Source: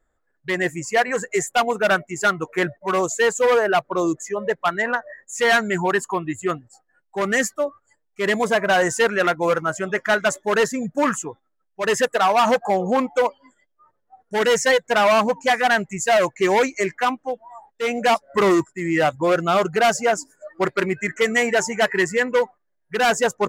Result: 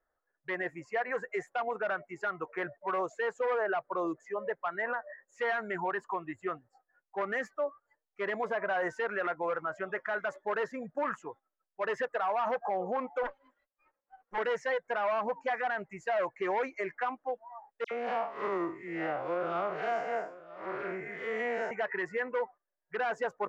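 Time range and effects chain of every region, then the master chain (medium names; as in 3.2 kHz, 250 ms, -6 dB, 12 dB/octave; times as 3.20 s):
13.23–14.38 s: comb filter that takes the minimum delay 3.7 ms + peaking EQ 5 kHz -4 dB 0.8 oct
17.84–21.71 s: spectral blur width 152 ms + phase dispersion lows, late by 71 ms, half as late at 2.4 kHz + delay 968 ms -20.5 dB
whole clip: three-band isolator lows -13 dB, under 430 Hz, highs -22 dB, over 2.1 kHz; peak limiter -18.5 dBFS; resonant high shelf 6.7 kHz -8.5 dB, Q 1.5; trim -5.5 dB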